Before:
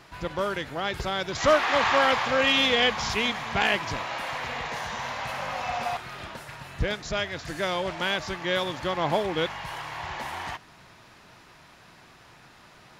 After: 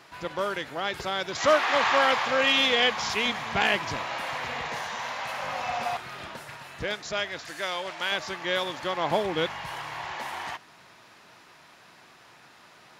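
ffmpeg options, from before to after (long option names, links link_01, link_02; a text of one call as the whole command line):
ffmpeg -i in.wav -af "asetnsamples=nb_out_samples=441:pad=0,asendcmd='3.26 highpass f 97;4.82 highpass f 360;5.44 highpass f 140;6.57 highpass f 380;7.45 highpass f 900;8.12 highpass f 350;9.11 highpass f 100;10.02 highpass f 290',highpass=frequency=280:poles=1" out.wav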